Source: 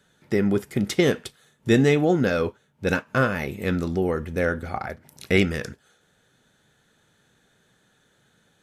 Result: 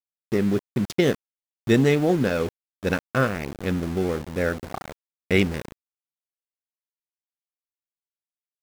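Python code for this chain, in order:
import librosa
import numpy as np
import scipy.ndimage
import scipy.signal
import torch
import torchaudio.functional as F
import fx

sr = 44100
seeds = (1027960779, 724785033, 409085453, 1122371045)

y = fx.wiener(x, sr, points=41)
y = np.where(np.abs(y) >= 10.0 ** (-31.5 / 20.0), y, 0.0)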